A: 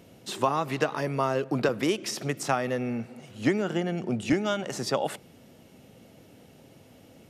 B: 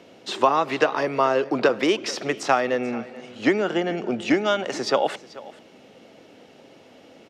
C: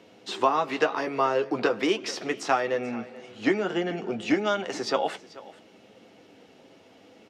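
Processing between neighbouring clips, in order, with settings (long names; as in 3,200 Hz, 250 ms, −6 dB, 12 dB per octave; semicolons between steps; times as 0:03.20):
three-way crossover with the lows and the highs turned down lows −17 dB, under 250 Hz, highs −21 dB, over 6,200 Hz; single-tap delay 435 ms −19 dB; level +7 dB
flanger 0.68 Hz, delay 9.4 ms, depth 1.7 ms, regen −39%; notch filter 580 Hz, Q 12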